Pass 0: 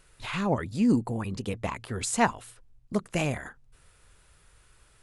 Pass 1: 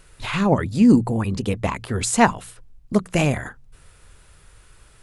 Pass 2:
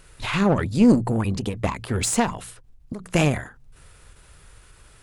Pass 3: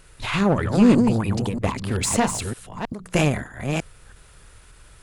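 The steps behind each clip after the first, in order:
low-shelf EQ 330 Hz +3.5 dB; mains-hum notches 60/120/180 Hz; level +7 dB
one-sided soft clipper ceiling −17.5 dBFS; every ending faded ahead of time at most 130 dB per second; level +1.5 dB
delay that plays each chunk backwards 317 ms, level −5 dB

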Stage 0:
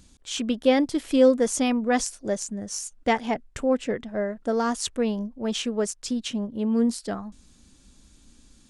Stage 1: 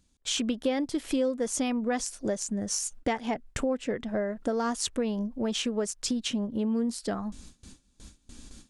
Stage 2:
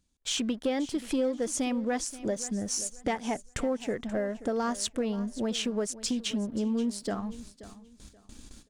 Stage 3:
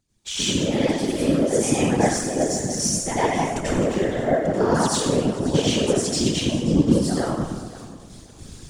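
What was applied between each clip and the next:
noise gate with hold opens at −43 dBFS; downward compressor 4 to 1, threshold −35 dBFS, peak gain reduction 18.5 dB; level +7 dB
leveller curve on the samples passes 1; repeating echo 530 ms, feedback 26%, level −16.5 dB; level −4.5 dB
dense smooth reverb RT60 1.2 s, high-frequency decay 0.75×, pre-delay 75 ms, DRR −9 dB; random phases in short frames

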